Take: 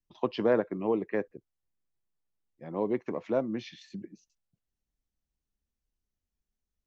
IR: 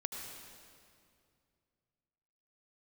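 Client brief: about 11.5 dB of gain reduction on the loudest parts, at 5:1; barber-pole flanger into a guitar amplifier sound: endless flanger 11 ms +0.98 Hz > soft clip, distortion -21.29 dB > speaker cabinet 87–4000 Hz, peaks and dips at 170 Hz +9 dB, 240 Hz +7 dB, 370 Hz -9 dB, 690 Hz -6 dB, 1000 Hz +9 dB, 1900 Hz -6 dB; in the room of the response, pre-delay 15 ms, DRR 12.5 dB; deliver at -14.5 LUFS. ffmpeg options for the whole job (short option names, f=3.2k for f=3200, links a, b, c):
-filter_complex "[0:a]acompressor=threshold=-33dB:ratio=5,asplit=2[a][b];[1:a]atrim=start_sample=2205,adelay=15[c];[b][c]afir=irnorm=-1:irlink=0,volume=-13dB[d];[a][d]amix=inputs=2:normalize=0,asplit=2[e][f];[f]adelay=11,afreqshift=0.98[g];[e][g]amix=inputs=2:normalize=1,asoftclip=threshold=-29.5dB,highpass=87,equalizer=f=170:t=q:w=4:g=9,equalizer=f=240:t=q:w=4:g=7,equalizer=f=370:t=q:w=4:g=-9,equalizer=f=690:t=q:w=4:g=-6,equalizer=f=1k:t=q:w=4:g=9,equalizer=f=1.9k:t=q:w=4:g=-6,lowpass=f=4k:w=0.5412,lowpass=f=4k:w=1.3066,volume=27dB"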